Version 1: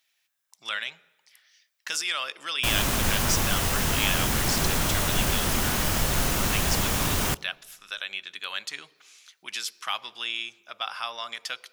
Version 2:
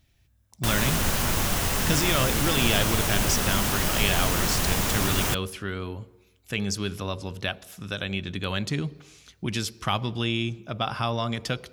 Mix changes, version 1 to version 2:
speech: remove high-pass filter 1,200 Hz 12 dB per octave
background: entry −2.00 s

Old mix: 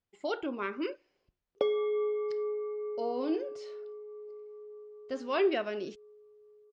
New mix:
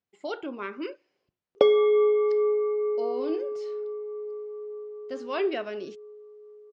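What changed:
speech: add high-pass filter 120 Hz 12 dB per octave
background +10.0 dB

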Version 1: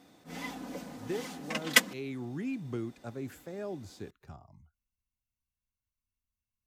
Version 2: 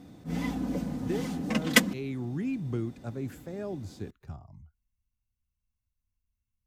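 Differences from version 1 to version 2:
background: add low-shelf EQ 370 Hz +11 dB
master: add low-shelf EQ 190 Hz +10.5 dB

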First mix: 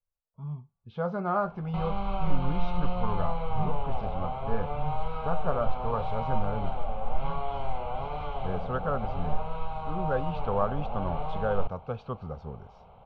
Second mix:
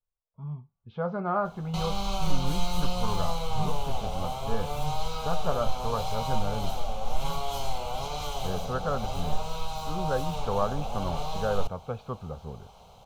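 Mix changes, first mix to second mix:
speech: add low-pass filter 2,200 Hz 24 dB per octave
master: remove low-pass filter 2,300 Hz 24 dB per octave

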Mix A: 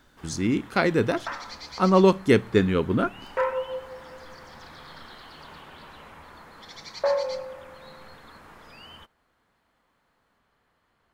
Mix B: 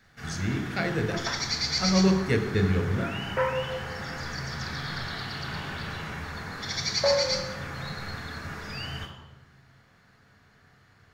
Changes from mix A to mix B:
speech −7.0 dB
first sound +7.0 dB
reverb: on, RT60 1.1 s

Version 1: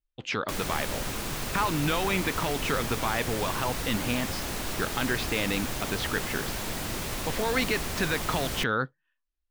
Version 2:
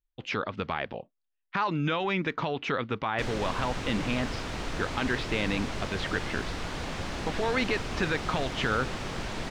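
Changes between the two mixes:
background: entry +2.70 s
master: add high-frequency loss of the air 110 metres

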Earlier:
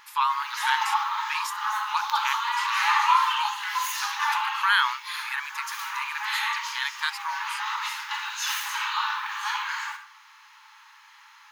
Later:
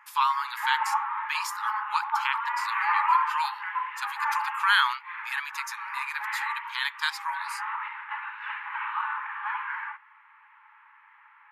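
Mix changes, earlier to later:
background: add Butterworth low-pass 2,300 Hz 36 dB per octave
reverb: off

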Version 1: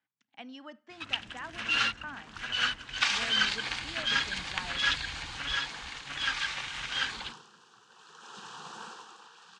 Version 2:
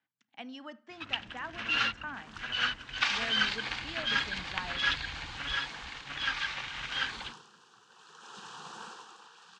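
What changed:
speech: send +10.0 dB
first sound: add high-frequency loss of the air 100 metres
second sound: send −7.5 dB

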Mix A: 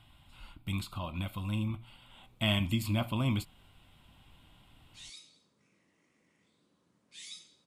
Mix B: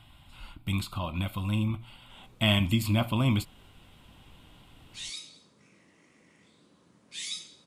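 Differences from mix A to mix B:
speech +5.0 dB
background +10.5 dB

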